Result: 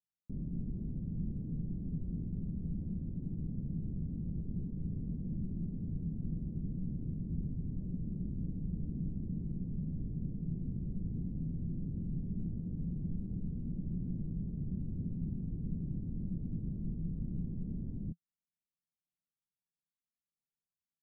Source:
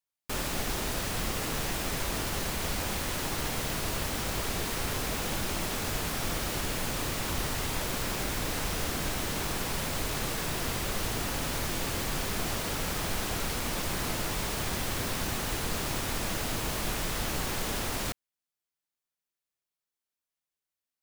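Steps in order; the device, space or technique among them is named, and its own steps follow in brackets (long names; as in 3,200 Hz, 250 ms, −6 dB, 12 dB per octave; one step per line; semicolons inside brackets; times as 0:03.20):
the neighbour's flat through the wall (low-pass filter 220 Hz 24 dB per octave; parametric band 170 Hz +7 dB 0.46 octaves)
low-shelf EQ 210 Hz −9.5 dB
level +4.5 dB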